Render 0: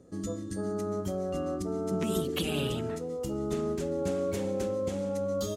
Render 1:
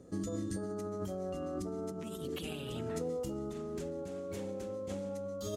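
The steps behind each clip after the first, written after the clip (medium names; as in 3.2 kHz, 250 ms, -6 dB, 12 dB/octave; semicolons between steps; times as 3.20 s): compressor with a negative ratio -36 dBFS, ratio -1; trim -3 dB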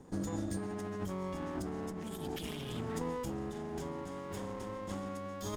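comb filter that takes the minimum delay 0.58 ms; trim +1 dB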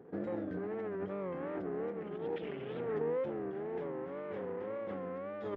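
cabinet simulation 200–2300 Hz, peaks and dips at 240 Hz -6 dB, 470 Hz +8 dB, 1 kHz -7 dB; wow and flutter 120 cents; trim +1 dB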